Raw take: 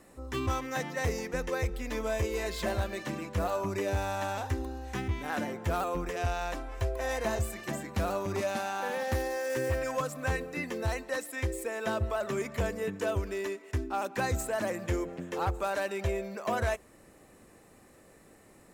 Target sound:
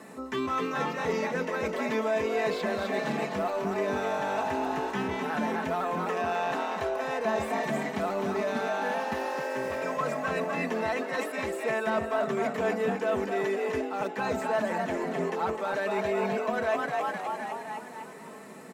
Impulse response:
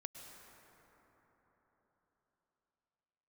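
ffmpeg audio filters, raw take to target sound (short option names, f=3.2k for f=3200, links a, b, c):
-filter_complex "[0:a]highpass=f=130:w=0.5412,highpass=f=130:w=1.3066,highshelf=f=6.5k:g=-8,acrossover=split=4600[a][b];[b]acompressor=threshold=-54dB:ratio=4:attack=1:release=60[c];[a][c]amix=inputs=2:normalize=0,asplit=8[d][e][f][g][h][i][j][k];[e]adelay=257,afreqshift=47,volume=-6dB[l];[f]adelay=514,afreqshift=94,volume=-11dB[m];[g]adelay=771,afreqshift=141,volume=-16.1dB[n];[h]adelay=1028,afreqshift=188,volume=-21.1dB[o];[i]adelay=1285,afreqshift=235,volume=-26.1dB[p];[j]adelay=1542,afreqshift=282,volume=-31.2dB[q];[k]adelay=1799,afreqshift=329,volume=-36.2dB[r];[d][l][m][n][o][p][q][r]amix=inputs=8:normalize=0,asplit=2[s][t];[t]volume=30dB,asoftclip=hard,volume=-30dB,volume=-11dB[u];[s][u]amix=inputs=2:normalize=0,equalizer=f=960:w=1.5:g=2.5,areverse,acompressor=threshold=-35dB:ratio=6,areverse,aecho=1:1:4.6:0.61,volume=7dB"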